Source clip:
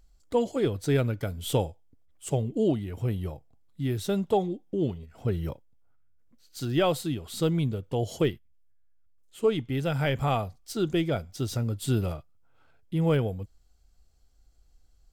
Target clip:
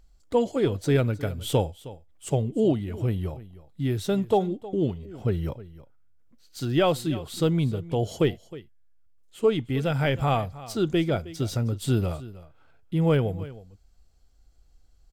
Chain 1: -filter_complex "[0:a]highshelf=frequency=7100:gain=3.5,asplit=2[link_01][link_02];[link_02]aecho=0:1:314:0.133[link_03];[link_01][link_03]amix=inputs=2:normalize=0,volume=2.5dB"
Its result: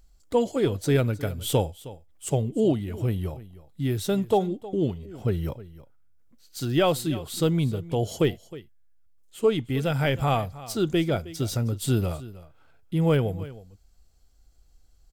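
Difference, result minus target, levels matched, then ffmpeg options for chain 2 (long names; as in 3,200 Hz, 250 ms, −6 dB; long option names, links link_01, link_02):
8,000 Hz band +4.5 dB
-filter_complex "[0:a]highshelf=frequency=7100:gain=-4.5,asplit=2[link_01][link_02];[link_02]aecho=0:1:314:0.133[link_03];[link_01][link_03]amix=inputs=2:normalize=0,volume=2.5dB"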